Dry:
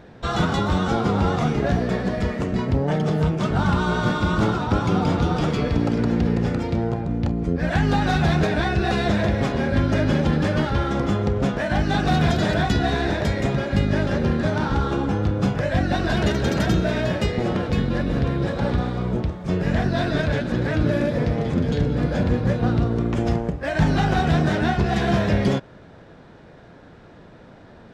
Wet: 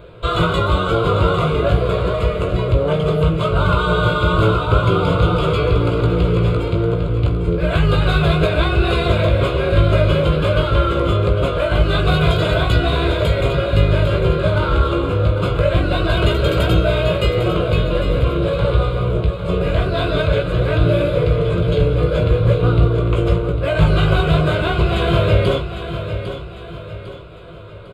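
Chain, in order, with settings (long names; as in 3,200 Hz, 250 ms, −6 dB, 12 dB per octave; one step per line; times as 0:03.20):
phaser with its sweep stopped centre 1,200 Hz, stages 8
double-tracking delay 18 ms −5.5 dB
repeating echo 802 ms, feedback 42%, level −10 dB
level +7.5 dB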